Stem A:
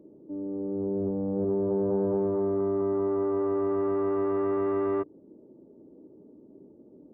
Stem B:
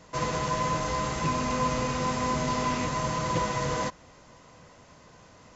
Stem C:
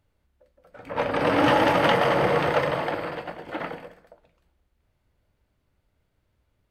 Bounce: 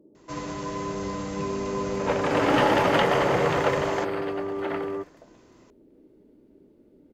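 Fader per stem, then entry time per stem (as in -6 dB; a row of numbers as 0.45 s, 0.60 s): -4.0 dB, -6.5 dB, -1.5 dB; 0.00 s, 0.15 s, 1.10 s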